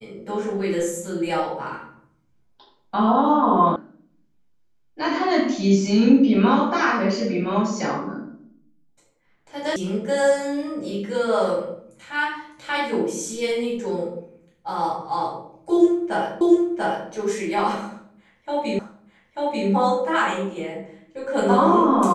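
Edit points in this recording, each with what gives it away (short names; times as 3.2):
3.76 sound cut off
9.76 sound cut off
16.41 repeat of the last 0.69 s
18.79 repeat of the last 0.89 s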